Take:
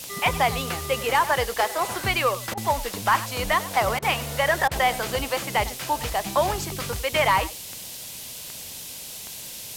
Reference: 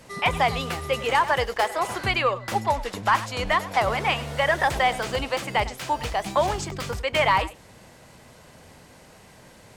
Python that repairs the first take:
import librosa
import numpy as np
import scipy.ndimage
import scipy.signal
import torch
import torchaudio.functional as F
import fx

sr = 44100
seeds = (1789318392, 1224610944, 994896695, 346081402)

y = fx.fix_declick_ar(x, sr, threshold=10.0)
y = fx.fix_interpolate(y, sr, at_s=(2.54, 3.99, 4.68), length_ms=32.0)
y = fx.noise_reduce(y, sr, print_start_s=8.63, print_end_s=9.13, reduce_db=12.0)